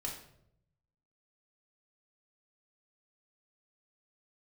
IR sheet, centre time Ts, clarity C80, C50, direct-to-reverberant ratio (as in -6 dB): 29 ms, 9.0 dB, 5.5 dB, -2.0 dB